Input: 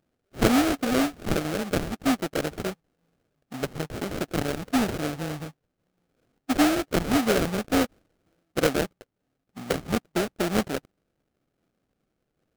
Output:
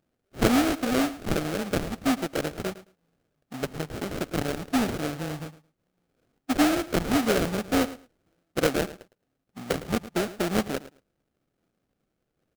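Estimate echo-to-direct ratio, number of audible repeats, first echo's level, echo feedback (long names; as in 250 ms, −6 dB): −16.0 dB, 2, −16.0 dB, 16%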